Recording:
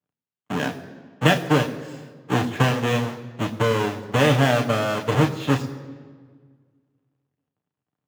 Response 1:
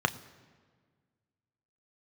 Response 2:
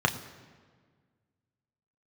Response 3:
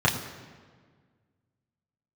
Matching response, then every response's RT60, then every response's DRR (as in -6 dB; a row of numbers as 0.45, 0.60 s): 2; 1.6, 1.6, 1.6 s; 9.5, 4.0, -4.5 dB